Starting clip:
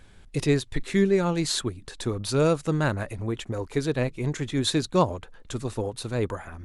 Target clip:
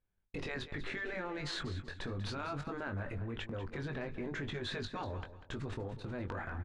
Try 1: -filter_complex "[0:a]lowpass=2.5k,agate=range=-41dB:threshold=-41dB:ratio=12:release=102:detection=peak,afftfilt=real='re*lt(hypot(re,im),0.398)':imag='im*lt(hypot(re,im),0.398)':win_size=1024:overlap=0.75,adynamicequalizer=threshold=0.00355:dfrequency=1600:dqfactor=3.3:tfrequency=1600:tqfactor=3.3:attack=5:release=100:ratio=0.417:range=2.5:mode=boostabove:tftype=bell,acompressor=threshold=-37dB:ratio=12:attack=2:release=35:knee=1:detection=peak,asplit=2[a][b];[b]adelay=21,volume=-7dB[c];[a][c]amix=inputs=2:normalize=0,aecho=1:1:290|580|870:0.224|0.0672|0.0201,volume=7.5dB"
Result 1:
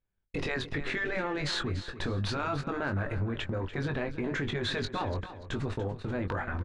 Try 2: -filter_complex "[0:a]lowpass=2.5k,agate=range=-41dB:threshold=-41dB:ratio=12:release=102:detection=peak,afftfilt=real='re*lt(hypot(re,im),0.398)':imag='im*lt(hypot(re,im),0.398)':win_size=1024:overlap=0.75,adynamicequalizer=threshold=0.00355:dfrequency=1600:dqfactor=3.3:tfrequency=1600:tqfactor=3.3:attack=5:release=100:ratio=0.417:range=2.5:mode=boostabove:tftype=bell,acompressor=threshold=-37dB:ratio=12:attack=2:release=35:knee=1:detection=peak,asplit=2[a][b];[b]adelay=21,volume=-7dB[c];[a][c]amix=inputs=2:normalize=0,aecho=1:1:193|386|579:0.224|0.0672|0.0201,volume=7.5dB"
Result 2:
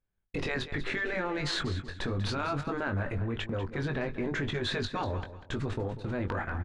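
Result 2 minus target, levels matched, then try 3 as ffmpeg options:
compressor: peak gain reduction -8 dB
-filter_complex "[0:a]lowpass=2.5k,agate=range=-41dB:threshold=-41dB:ratio=12:release=102:detection=peak,afftfilt=real='re*lt(hypot(re,im),0.398)':imag='im*lt(hypot(re,im),0.398)':win_size=1024:overlap=0.75,adynamicequalizer=threshold=0.00355:dfrequency=1600:dqfactor=3.3:tfrequency=1600:tqfactor=3.3:attack=5:release=100:ratio=0.417:range=2.5:mode=boostabove:tftype=bell,acompressor=threshold=-45.5dB:ratio=12:attack=2:release=35:knee=1:detection=peak,asplit=2[a][b];[b]adelay=21,volume=-7dB[c];[a][c]amix=inputs=2:normalize=0,aecho=1:1:193|386|579:0.224|0.0672|0.0201,volume=7.5dB"

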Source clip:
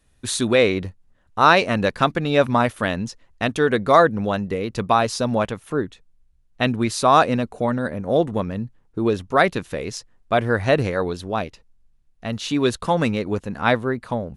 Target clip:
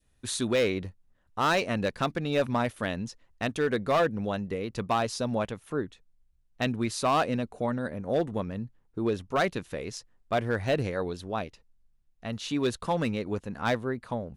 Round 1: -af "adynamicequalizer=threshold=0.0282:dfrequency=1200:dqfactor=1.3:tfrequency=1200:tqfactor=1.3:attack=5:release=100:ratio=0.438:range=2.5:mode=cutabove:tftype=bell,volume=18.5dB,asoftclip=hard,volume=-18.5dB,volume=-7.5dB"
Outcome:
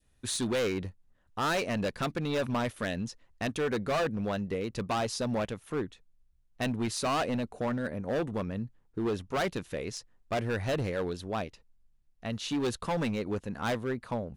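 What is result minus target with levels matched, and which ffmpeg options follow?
overloaded stage: distortion +7 dB
-af "adynamicequalizer=threshold=0.0282:dfrequency=1200:dqfactor=1.3:tfrequency=1200:tqfactor=1.3:attack=5:release=100:ratio=0.438:range=2.5:mode=cutabove:tftype=bell,volume=11.5dB,asoftclip=hard,volume=-11.5dB,volume=-7.5dB"

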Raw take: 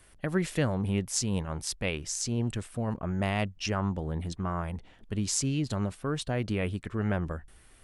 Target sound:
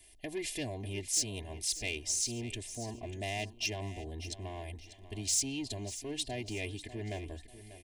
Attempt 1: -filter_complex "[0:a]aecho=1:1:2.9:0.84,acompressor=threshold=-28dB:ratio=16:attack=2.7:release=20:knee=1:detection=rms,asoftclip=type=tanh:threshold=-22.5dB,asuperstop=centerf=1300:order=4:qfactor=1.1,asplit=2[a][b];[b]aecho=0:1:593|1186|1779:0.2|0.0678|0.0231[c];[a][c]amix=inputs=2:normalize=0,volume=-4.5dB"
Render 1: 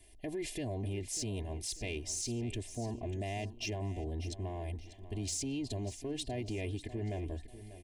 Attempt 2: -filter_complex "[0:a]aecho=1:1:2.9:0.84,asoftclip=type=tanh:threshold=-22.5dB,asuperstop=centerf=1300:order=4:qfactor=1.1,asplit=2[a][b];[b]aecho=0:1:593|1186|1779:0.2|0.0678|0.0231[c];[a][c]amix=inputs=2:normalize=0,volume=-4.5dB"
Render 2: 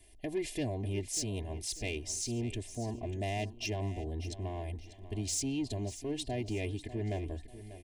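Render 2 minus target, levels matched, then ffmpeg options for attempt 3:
1000 Hz band +2.5 dB
-filter_complex "[0:a]aecho=1:1:2.9:0.84,asoftclip=type=tanh:threshold=-22.5dB,asuperstop=centerf=1300:order=4:qfactor=1.1,tiltshelf=f=1.1k:g=-5,asplit=2[a][b];[b]aecho=0:1:593|1186|1779:0.2|0.0678|0.0231[c];[a][c]amix=inputs=2:normalize=0,volume=-4.5dB"

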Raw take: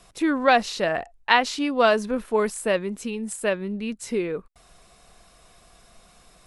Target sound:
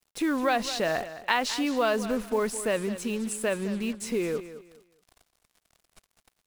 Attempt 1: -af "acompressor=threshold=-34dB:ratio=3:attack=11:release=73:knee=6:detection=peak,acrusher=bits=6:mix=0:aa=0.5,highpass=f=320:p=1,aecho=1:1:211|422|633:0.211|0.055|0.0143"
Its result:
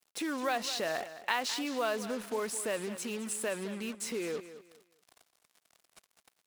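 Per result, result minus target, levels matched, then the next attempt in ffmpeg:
compressor: peak gain reduction +6 dB; 250 Hz band -2.5 dB
-af "acompressor=threshold=-25dB:ratio=3:attack=11:release=73:knee=6:detection=peak,acrusher=bits=6:mix=0:aa=0.5,highpass=f=320:p=1,aecho=1:1:211|422|633:0.211|0.055|0.0143"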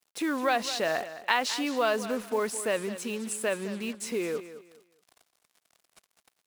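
250 Hz band -2.5 dB
-af "acompressor=threshold=-25dB:ratio=3:attack=11:release=73:knee=6:detection=peak,acrusher=bits=6:mix=0:aa=0.5,aecho=1:1:211|422|633:0.211|0.055|0.0143"

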